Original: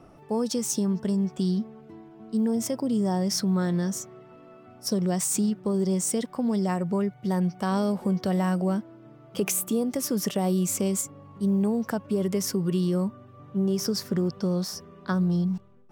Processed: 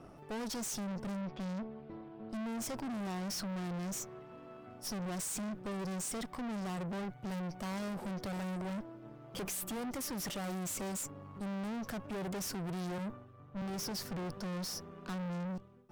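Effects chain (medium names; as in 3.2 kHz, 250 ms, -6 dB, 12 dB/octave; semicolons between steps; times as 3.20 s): 1.21–2.30 s: steep low-pass 4.6 kHz; valve stage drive 39 dB, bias 0.7; 12.98–13.62 s: three bands expanded up and down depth 70%; trim +1.5 dB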